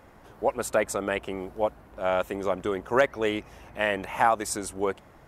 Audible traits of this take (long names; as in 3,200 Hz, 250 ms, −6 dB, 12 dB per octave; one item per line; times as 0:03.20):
background noise floor −53 dBFS
spectral slope −3.5 dB per octave